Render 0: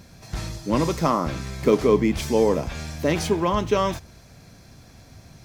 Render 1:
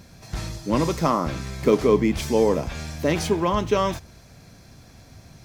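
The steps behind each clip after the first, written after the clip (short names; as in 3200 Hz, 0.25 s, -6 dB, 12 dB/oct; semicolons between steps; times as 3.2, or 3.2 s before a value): nothing audible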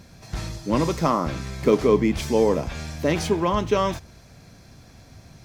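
high shelf 9500 Hz -4 dB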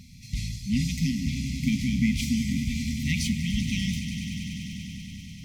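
swelling echo 97 ms, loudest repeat 5, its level -13.5 dB; FFT band-reject 270–1900 Hz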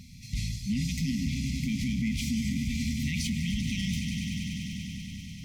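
limiter -21.5 dBFS, peak gain reduction 9 dB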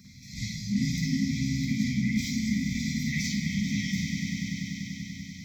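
fixed phaser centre 2800 Hz, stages 6; reverb RT60 1.1 s, pre-delay 45 ms, DRR -4 dB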